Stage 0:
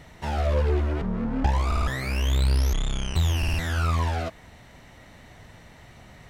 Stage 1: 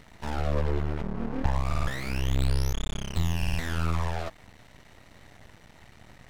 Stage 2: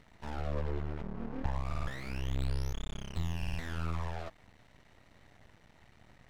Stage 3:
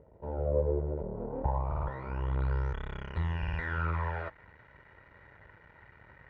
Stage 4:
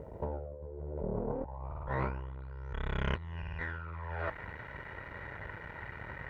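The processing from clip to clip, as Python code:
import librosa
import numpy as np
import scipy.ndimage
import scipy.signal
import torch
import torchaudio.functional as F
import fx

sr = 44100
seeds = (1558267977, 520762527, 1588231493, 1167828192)

y1 = np.maximum(x, 0.0)
y2 = fx.high_shelf(y1, sr, hz=6100.0, db=-6.5)
y2 = F.gain(torch.from_numpy(y2), -8.0).numpy()
y3 = scipy.signal.sosfilt(scipy.signal.butter(2, 45.0, 'highpass', fs=sr, output='sos'), y2)
y3 = y3 + 0.49 * np.pad(y3, (int(2.1 * sr / 1000.0), 0))[:len(y3)]
y3 = fx.filter_sweep_lowpass(y3, sr, from_hz=560.0, to_hz=1700.0, start_s=0.95, end_s=2.87, q=2.4)
y3 = F.gain(torch.from_numpy(y3), 2.5).numpy()
y4 = fx.over_compress(y3, sr, threshold_db=-42.0, ratio=-1.0)
y4 = fx.doppler_dist(y4, sr, depth_ms=0.16)
y4 = F.gain(torch.from_numpy(y4), 3.5).numpy()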